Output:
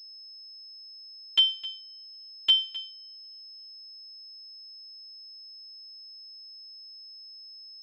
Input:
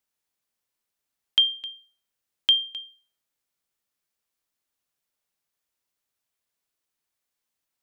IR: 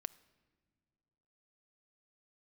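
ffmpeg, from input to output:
-filter_complex "[0:a]asplit=2[s0][s1];[1:a]atrim=start_sample=2205,adelay=10[s2];[s1][s2]afir=irnorm=-1:irlink=0,volume=1.26[s3];[s0][s3]amix=inputs=2:normalize=0,afftfilt=real='hypot(re,im)*cos(PI*b)':imag='0':win_size=512:overlap=0.75,aeval=exprs='val(0)+0.00631*sin(2*PI*5200*n/s)':c=same"

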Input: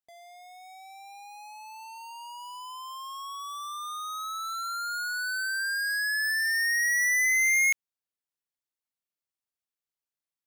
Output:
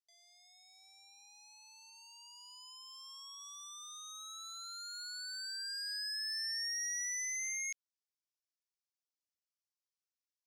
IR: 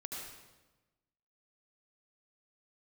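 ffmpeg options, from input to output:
-af "acompressor=threshold=0.0251:ratio=2,bandpass=f=5400:t=q:w=2.9:csg=0,volume=1.12"

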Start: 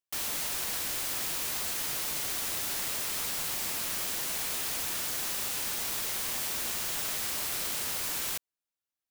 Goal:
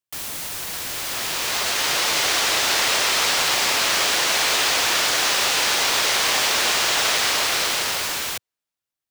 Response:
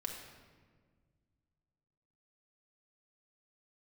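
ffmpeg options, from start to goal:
-filter_complex "[0:a]equalizer=f=110:w=1:g=5,acrossover=split=360|6400[s0][s1][s2];[s1]dynaudnorm=f=230:g=13:m=6.68[s3];[s0][s3][s2]amix=inputs=3:normalize=0,volume=1.33"

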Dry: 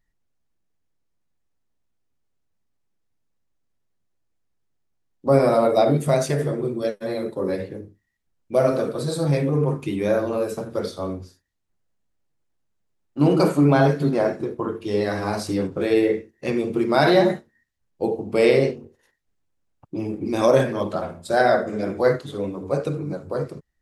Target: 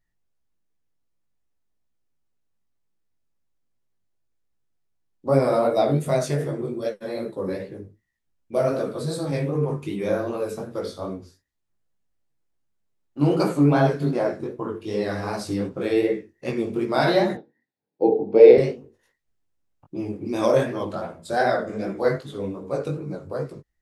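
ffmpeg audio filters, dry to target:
-filter_complex "[0:a]asettb=1/sr,asplit=3[s0][s1][s2];[s0]atrim=end=17.354[s3];[s1]atrim=start=17.35:end=18.58,asetpts=PTS-STARTPTS,afade=t=in:d=0.004:c=qsin,afade=t=out:st=1.226:d=0.004:c=qsin,highpass=f=130:w=0.5412,highpass=f=130:w=1.3066,equalizer=f=300:t=q:w=4:g=9,equalizer=f=460:t=q:w=4:g=10,equalizer=f=800:t=q:w=4:g=7,equalizer=f=1200:t=q:w=4:g=-9,equalizer=f=1900:t=q:w=4:g=-5,equalizer=f=3000:t=q:w=4:g=-9,lowpass=f=4100:w=0.5412,lowpass=f=4100:w=1.3066[s4];[s2]atrim=start=18.576[s5];[s3][s4]acrossfade=d=0.004:c1=hsin:c2=qsin[s6];[s6][s5]acrossfade=d=0.004:c1=qsin:c2=hsin,flanger=delay=15:depth=5.9:speed=2.6"

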